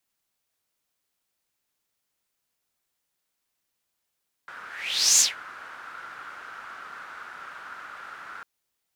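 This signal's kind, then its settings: whoosh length 3.95 s, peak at 0.72, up 0.58 s, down 0.17 s, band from 1400 Hz, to 6700 Hz, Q 5.4, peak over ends 24.5 dB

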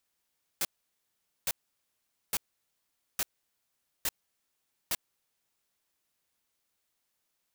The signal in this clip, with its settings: noise bursts white, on 0.04 s, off 0.82 s, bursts 6, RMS -29.5 dBFS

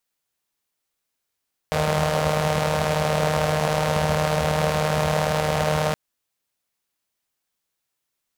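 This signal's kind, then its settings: four-cylinder engine model, steady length 4.22 s, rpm 4600, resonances 81/160/550 Hz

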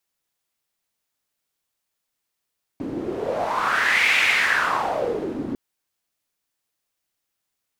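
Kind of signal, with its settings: wind-like swept noise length 2.75 s, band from 280 Hz, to 2300 Hz, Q 4.5, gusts 1, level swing 10 dB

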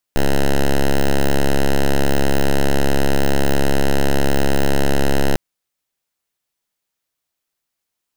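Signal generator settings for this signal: pulse 69.3 Hz, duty 6% -13 dBFS 5.20 s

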